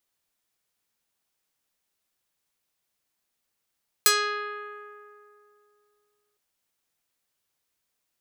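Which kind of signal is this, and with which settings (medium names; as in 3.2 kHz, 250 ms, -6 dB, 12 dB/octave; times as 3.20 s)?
plucked string G#4, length 2.31 s, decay 2.74 s, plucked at 0.45, medium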